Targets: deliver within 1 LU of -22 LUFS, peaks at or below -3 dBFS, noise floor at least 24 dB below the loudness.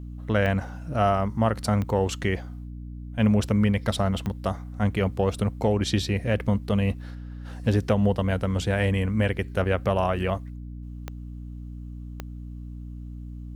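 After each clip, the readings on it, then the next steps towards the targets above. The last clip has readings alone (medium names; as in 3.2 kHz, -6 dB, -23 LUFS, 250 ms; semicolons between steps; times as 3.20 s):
clicks found 5; hum 60 Hz; highest harmonic 300 Hz; hum level -35 dBFS; loudness -25.5 LUFS; peak level -10.5 dBFS; loudness target -22.0 LUFS
-> de-click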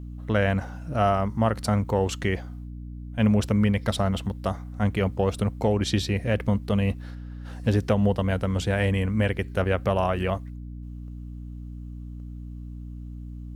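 clicks found 0; hum 60 Hz; highest harmonic 300 Hz; hum level -35 dBFS
-> hum notches 60/120/180/240/300 Hz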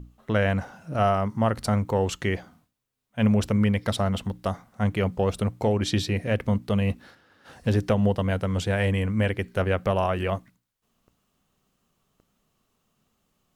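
hum not found; loudness -25.5 LUFS; peak level -11.0 dBFS; loudness target -22.0 LUFS
-> trim +3.5 dB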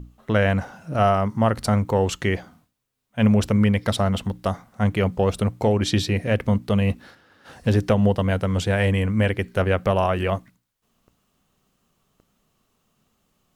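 loudness -22.0 LUFS; peak level -7.5 dBFS; noise floor -72 dBFS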